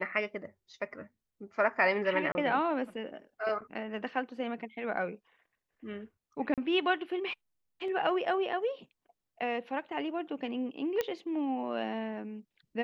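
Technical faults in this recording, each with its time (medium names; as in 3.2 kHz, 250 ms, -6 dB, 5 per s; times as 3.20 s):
2.32–2.35 s: dropout 30 ms
6.54–6.58 s: dropout 37 ms
11.01 s: pop -17 dBFS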